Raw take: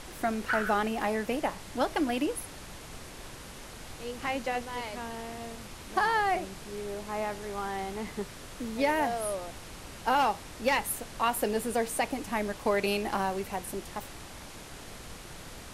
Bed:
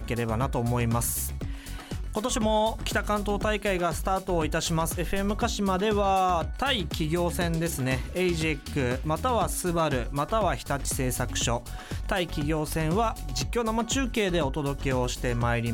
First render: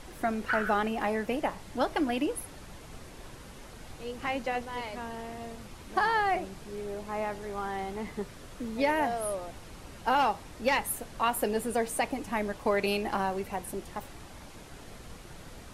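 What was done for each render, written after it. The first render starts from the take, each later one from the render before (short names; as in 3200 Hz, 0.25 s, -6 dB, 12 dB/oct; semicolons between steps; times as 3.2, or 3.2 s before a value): denoiser 6 dB, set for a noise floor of -46 dBFS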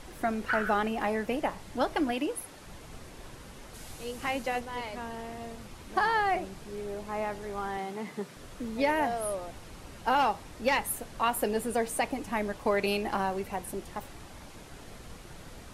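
2.12–2.66 low shelf 150 Hz -10 dB; 3.73–4.59 high shelf 4400 Hz -> 8000 Hz +10.5 dB; 7.77–8.37 Chebyshev high-pass 150 Hz, order 3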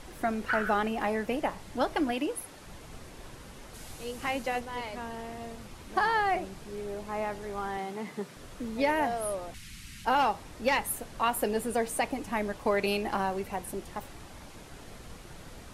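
9.54–10.05 EQ curve 210 Hz 0 dB, 380 Hz -15 dB, 610 Hz -27 dB, 2000 Hz +6 dB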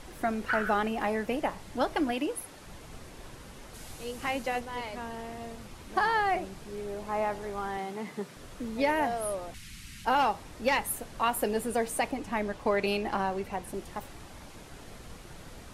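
7.01–7.5 bell 810 Hz +4 dB 1.5 oct; 12.11–13.74 high shelf 11000 Hz -11.5 dB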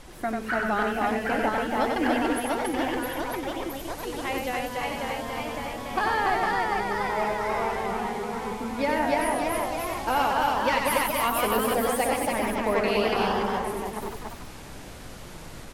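echoes that change speed 0.794 s, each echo +1 st, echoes 3; on a send: loudspeakers at several distances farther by 32 m -4 dB, 98 m -3 dB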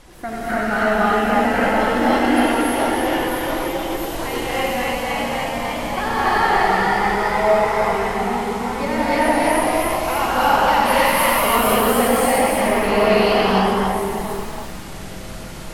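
non-linear reverb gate 0.37 s rising, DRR -7.5 dB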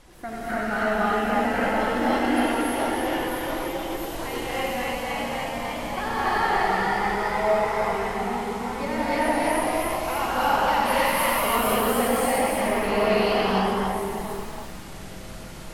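gain -6 dB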